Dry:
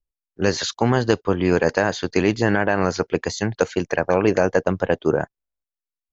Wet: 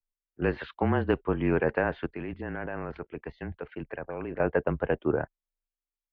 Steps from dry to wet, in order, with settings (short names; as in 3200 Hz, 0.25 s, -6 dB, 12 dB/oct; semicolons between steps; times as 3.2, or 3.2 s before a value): steep low-pass 2800 Hz 36 dB/oct; 2.06–4.4 level quantiser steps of 14 dB; frequency shift -27 Hz; gain -7 dB